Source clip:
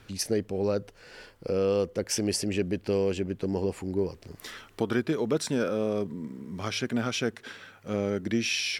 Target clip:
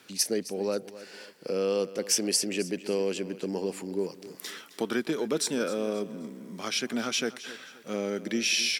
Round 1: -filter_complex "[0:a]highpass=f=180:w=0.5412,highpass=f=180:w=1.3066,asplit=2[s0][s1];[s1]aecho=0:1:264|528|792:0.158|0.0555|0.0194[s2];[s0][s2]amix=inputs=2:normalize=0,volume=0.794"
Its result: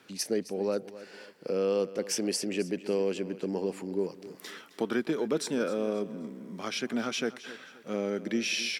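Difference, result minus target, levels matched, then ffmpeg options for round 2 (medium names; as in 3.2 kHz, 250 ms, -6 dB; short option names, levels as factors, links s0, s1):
8 kHz band -5.5 dB
-filter_complex "[0:a]highpass=f=180:w=0.5412,highpass=f=180:w=1.3066,highshelf=f=3300:g=9,asplit=2[s0][s1];[s1]aecho=0:1:264|528|792:0.158|0.0555|0.0194[s2];[s0][s2]amix=inputs=2:normalize=0,volume=0.794"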